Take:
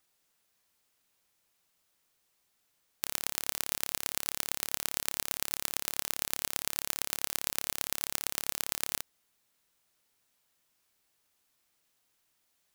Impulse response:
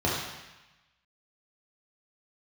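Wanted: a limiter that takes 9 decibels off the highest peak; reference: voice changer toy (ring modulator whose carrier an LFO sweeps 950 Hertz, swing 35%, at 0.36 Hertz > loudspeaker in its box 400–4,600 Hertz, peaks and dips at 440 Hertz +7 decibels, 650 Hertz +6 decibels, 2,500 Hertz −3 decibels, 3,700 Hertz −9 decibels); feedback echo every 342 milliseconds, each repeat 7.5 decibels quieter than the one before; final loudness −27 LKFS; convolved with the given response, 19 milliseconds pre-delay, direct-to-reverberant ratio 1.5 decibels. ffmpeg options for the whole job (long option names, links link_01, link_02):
-filter_complex "[0:a]alimiter=limit=-10dB:level=0:latency=1,aecho=1:1:342|684|1026|1368|1710:0.422|0.177|0.0744|0.0312|0.0131,asplit=2[link_01][link_02];[1:a]atrim=start_sample=2205,adelay=19[link_03];[link_02][link_03]afir=irnorm=-1:irlink=0,volume=-14.5dB[link_04];[link_01][link_04]amix=inputs=2:normalize=0,aeval=exprs='val(0)*sin(2*PI*950*n/s+950*0.35/0.36*sin(2*PI*0.36*n/s))':channel_layout=same,highpass=400,equalizer=frequency=440:width_type=q:width=4:gain=7,equalizer=frequency=650:width_type=q:width=4:gain=6,equalizer=frequency=2500:width_type=q:width=4:gain=-3,equalizer=frequency=3700:width_type=q:width=4:gain=-9,lowpass=frequency=4600:width=0.5412,lowpass=frequency=4600:width=1.3066,volume=20.5dB"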